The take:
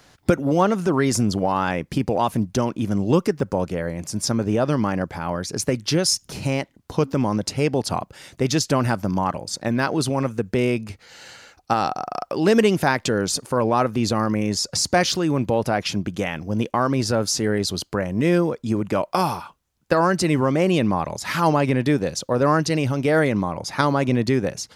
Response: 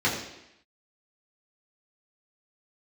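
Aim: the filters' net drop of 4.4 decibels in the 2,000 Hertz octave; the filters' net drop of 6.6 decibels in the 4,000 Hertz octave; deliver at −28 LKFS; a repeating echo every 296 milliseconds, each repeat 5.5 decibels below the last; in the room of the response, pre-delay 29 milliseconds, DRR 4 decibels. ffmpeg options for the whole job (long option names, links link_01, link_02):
-filter_complex "[0:a]equalizer=frequency=2000:width_type=o:gain=-4,equalizer=frequency=4000:width_type=o:gain=-8.5,aecho=1:1:296|592|888|1184|1480|1776|2072:0.531|0.281|0.149|0.079|0.0419|0.0222|0.0118,asplit=2[link_01][link_02];[1:a]atrim=start_sample=2205,adelay=29[link_03];[link_02][link_03]afir=irnorm=-1:irlink=0,volume=-18dB[link_04];[link_01][link_04]amix=inputs=2:normalize=0,volume=-9dB"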